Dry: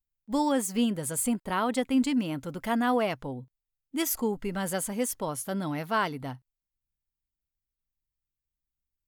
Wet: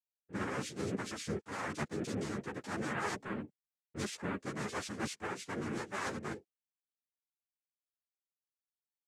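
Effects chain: expander -47 dBFS; reverse; compressor, threshold -33 dBFS, peak gain reduction 12.5 dB; reverse; noise vocoder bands 3; ensemble effect; gain +1 dB

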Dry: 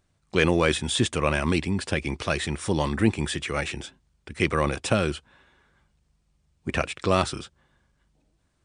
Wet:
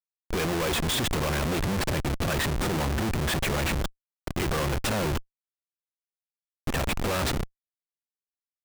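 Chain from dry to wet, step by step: reverse echo 56 ms -17 dB; Schmitt trigger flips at -31.5 dBFS; gain +1 dB

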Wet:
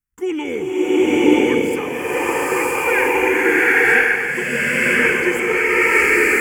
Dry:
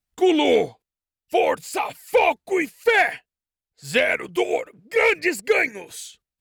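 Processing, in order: fixed phaser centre 1600 Hz, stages 4; bloom reverb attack 0.99 s, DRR -12 dB; gain -1 dB

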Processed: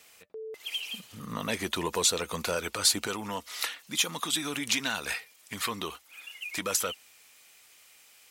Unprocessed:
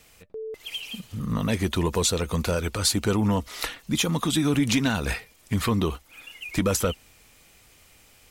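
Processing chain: HPF 680 Hz 6 dB/oct, from 3.07 s 1400 Hz

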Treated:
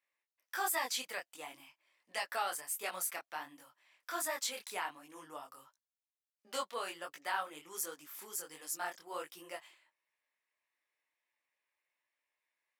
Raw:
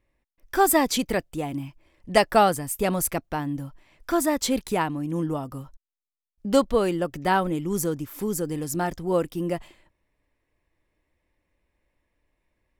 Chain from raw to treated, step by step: HPF 1100 Hz 12 dB/oct; limiter -18.5 dBFS, peak gain reduction 10.5 dB; detuned doubles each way 48 cents; gain -2.5 dB

